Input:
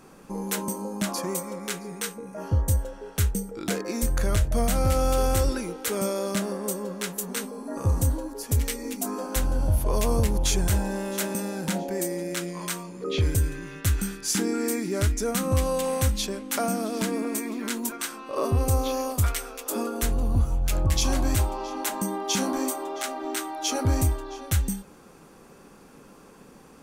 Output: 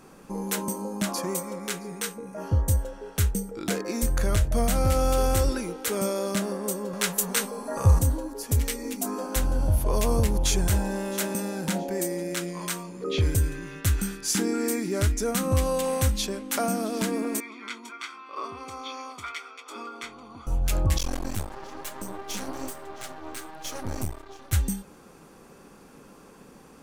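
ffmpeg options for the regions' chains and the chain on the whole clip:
ffmpeg -i in.wav -filter_complex "[0:a]asettb=1/sr,asplit=3[link_01][link_02][link_03];[link_01]atrim=end=6.934[link_04];[link_02]atrim=start=6.93:end=7.99,asetpts=PTS-STARTPTS,afade=type=in:duration=0.004:curve=qsin,afade=type=out:start_time=1.056:duration=0.004:curve=qsin,equalizer=frequency=290:width=1.9:gain=-13,acontrast=61[link_05];[link_03]atrim=start=7.986[link_06];[link_04][link_05]acrossfade=duration=0.004:curve1=hsin:curve2=qsin[link_07];[link_07][link_06]acrossfade=duration=0.004:curve1=qsin:curve2=hsin,asettb=1/sr,asplit=3[link_08][link_09][link_10];[link_08]atrim=end=17.404[link_11];[link_09]atrim=start=17.4:end=20.47,asetpts=PTS-STARTPTS,afade=type=in:duration=0.004:curve=qsin,afade=type=out:start_time=3.066:duration=0.004:curve=qsin,highpass=650,lowpass=3100,equalizer=frequency=880:width_type=o:width=0.86:gain=-8.5,aecho=1:1:0.9:0.71,atrim=end_sample=135387[link_12];[link_10]atrim=start=20.466[link_13];[link_11][link_12]acrossfade=duration=0.004:curve1=hsin:curve2=qsin[link_14];[link_14][link_13]acrossfade=duration=0.004:curve1=qsin:curve2=hsin,asettb=1/sr,asplit=3[link_15][link_16][link_17];[link_15]atrim=end=20.984[link_18];[link_16]atrim=start=20.98:end=24.53,asetpts=PTS-STARTPTS,afade=type=in:duration=0.004:curve=qsin,afade=type=out:start_time=3.546:duration=0.004:curve=qsin,flanger=delay=1.7:depth=7.7:regen=39:speed=1.1:shape=sinusoidal,aeval=exprs='max(val(0),0)':channel_layout=same[link_19];[link_17]atrim=start=24.526[link_20];[link_18][link_19]acrossfade=duration=0.004:curve1=hsin:curve2=qsin[link_21];[link_21][link_20]acrossfade=duration=0.004:curve1=qsin:curve2=hsin" out.wav

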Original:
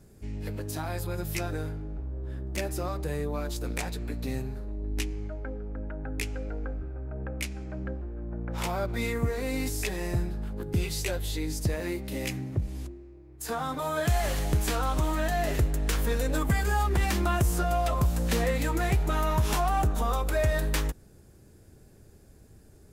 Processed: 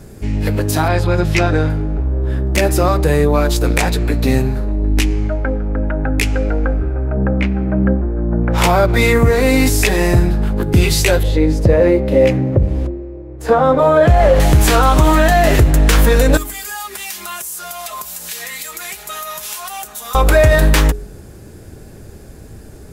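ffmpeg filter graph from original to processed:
ffmpeg -i in.wav -filter_complex "[0:a]asettb=1/sr,asplit=3[link_01][link_02][link_03];[link_01]atrim=end=0.884[link_04];[link_02]atrim=start=0.88:end=1.7,asetpts=PTS-STARTPTS,afade=type=in:duration=0.004:curve=qsin,afade=type=out:start_time=0.816:duration=0.004:curve=qsin,lowpass=5100,volume=24dB,asoftclip=hard,volume=-24dB[link_05];[link_03]atrim=start=1.696[link_06];[link_04][link_05]acrossfade=duration=0.004:curve1=hsin:curve2=qsin[link_07];[link_07][link_06]acrossfade=duration=0.004:curve1=qsin:curve2=hsin,asettb=1/sr,asplit=3[link_08][link_09][link_10];[link_08]atrim=end=7.164[link_11];[link_09]atrim=start=7.16:end=8.43,asetpts=PTS-STARTPTS,afade=type=in:duration=0.004:curve=qsin,afade=type=out:start_time=1.266:duration=0.004:curve=qsin,lowpass=1700,equalizer=frequency=210:width=3.1:gain=8.5[link_12];[link_10]atrim=start=8.426[link_13];[link_11][link_12]acrossfade=duration=0.004:curve1=hsin:curve2=qsin[link_14];[link_14][link_13]acrossfade=duration=0.004:curve1=qsin:curve2=hsin,asettb=1/sr,asplit=3[link_15][link_16][link_17];[link_15]atrim=end=11.234[link_18];[link_16]atrim=start=11.23:end=14.4,asetpts=PTS-STARTPTS,afade=type=in:duration=0.004:curve=qsin,afade=type=out:start_time=3.166:duration=0.004:curve=qsin,lowpass=frequency=1100:poles=1,equalizer=frequency=530:width_type=o:width=0.3:gain=12.5[link_19];[link_17]atrim=start=14.396[link_20];[link_18][link_19]acrossfade=duration=0.004:curve1=hsin:curve2=qsin[link_21];[link_21][link_20]acrossfade=duration=0.004:curve1=qsin:curve2=hsin,asettb=1/sr,asplit=3[link_22][link_23][link_24];[link_22]atrim=end=16.374[link_25];[link_23]atrim=start=16.37:end=20.15,asetpts=PTS-STARTPTS,afade=type=in:duration=0.004:curve=qsin,afade=type=out:start_time=3.776:duration=0.004:curve=qsin,aderivative,aecho=1:1:4.8:0.69,atrim=end_sample=166698,acompressor=threshold=-41dB:ratio=4:attack=3.2:release=140:knee=1:detection=peak[link_26];[link_24]atrim=start=20.146[link_27];[link_25][link_26]acrossfade=duration=0.004:curve1=hsin:curve2=qsin[link_28];[link_28][link_27]acrossfade=duration=0.004:curve1=qsin:curve2=hsin,bass=frequency=250:gain=-1,treble=frequency=4000:gain=-3,bandreject=frequency=46.26:width_type=h:width=4,bandreject=frequency=92.52:width_type=h:width=4,bandreject=frequency=138.78:width_type=h:width=4,bandreject=frequency=185.04:width_type=h:width=4,bandreject=frequency=231.3:width_type=h:width=4,bandreject=frequency=277.56:width_type=h:width=4,bandreject=frequency=323.82:width_type=h:width=4,bandreject=frequency=370.08:width_type=h:width=4,bandreject=frequency=416.34:width_type=h:width=4,alimiter=level_in=20dB:limit=-1dB:release=50:level=0:latency=1,volume=-1dB" out.wav

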